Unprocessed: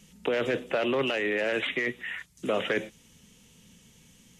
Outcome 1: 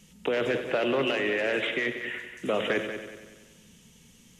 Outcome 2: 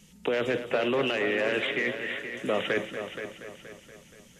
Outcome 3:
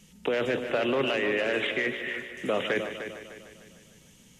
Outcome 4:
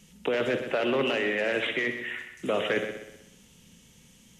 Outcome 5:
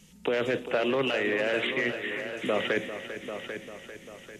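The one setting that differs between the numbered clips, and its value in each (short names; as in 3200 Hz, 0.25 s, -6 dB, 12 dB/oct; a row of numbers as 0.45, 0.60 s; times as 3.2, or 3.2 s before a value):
multi-head echo, time: 94, 237, 151, 63, 396 ms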